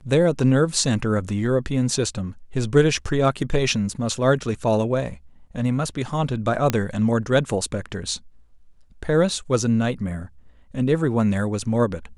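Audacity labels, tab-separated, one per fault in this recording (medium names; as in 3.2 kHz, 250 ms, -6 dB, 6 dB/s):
6.700000	6.700000	pop -6 dBFS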